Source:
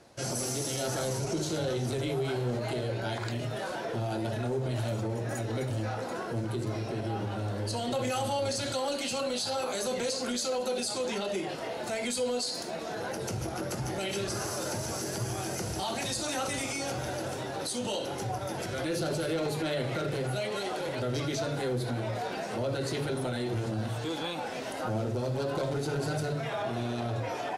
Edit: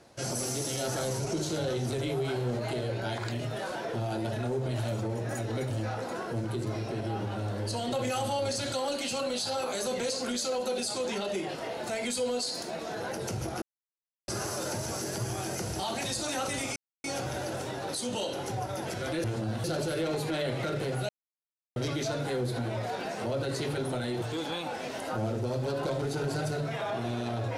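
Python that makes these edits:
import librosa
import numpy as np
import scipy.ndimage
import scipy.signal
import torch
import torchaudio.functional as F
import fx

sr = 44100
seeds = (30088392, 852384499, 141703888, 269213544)

y = fx.edit(x, sr, fx.silence(start_s=13.62, length_s=0.66),
    fx.insert_silence(at_s=16.76, length_s=0.28),
    fx.silence(start_s=20.41, length_s=0.67),
    fx.move(start_s=23.54, length_s=0.4, to_s=18.96), tone=tone)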